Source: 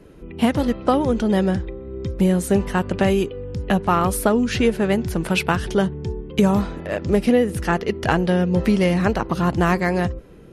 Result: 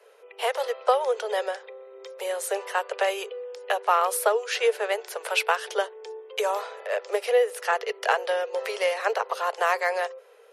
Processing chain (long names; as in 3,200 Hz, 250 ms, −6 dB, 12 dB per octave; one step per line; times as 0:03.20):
Butterworth high-pass 430 Hz 96 dB per octave
level −1.5 dB